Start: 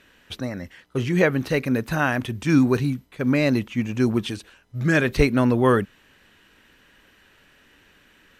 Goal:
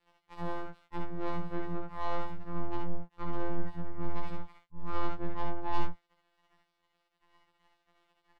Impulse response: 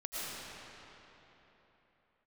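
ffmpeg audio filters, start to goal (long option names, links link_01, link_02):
-filter_complex "[0:a]lowpass=frequency=1200:width_type=q:width=14,lowshelf=frequency=84:gain=-2.5,areverse,acompressor=threshold=-27dB:ratio=16,areverse,asetrate=34006,aresample=44100,atempo=1.29684,afftfilt=real='hypot(re,im)*cos(2*PI*random(0))':imag='hypot(re,im)*sin(2*PI*random(1))':win_size=512:overlap=0.75,aeval=exprs='(tanh(70.8*val(0)+0.65)-tanh(0.65))/70.8':channel_layout=same,asubboost=boost=5.5:cutoff=54,aeval=exprs='sgn(val(0))*max(abs(val(0))-0.002,0)':channel_layout=same,afftfilt=real='hypot(re,im)*cos(PI*b)':imag='0':win_size=1024:overlap=0.75,asplit=2[link_01][link_02];[link_02]aecho=0:1:23|54|67:0.335|0.316|0.668[link_03];[link_01][link_03]amix=inputs=2:normalize=0,afftfilt=real='re*2*eq(mod(b,4),0)':imag='im*2*eq(mod(b,4),0)':win_size=2048:overlap=0.75,volume=5dB"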